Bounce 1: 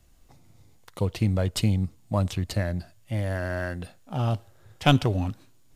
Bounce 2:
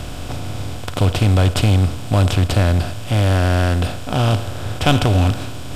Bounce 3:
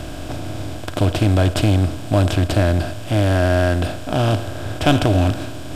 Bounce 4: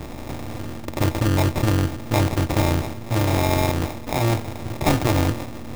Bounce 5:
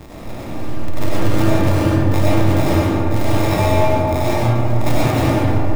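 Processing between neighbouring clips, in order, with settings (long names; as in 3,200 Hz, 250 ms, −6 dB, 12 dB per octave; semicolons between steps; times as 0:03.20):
compressor on every frequency bin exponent 0.4; low shelf with overshoot 110 Hz +7 dB, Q 1.5; level +2.5 dB
hollow resonant body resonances 320/630/1,600 Hz, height 10 dB, ringing for 50 ms; level −2.5 dB
sample-rate reduction 1,500 Hz, jitter 0%; amplitude modulation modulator 230 Hz, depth 80%
convolution reverb RT60 2.9 s, pre-delay 55 ms, DRR −8 dB; level −4.5 dB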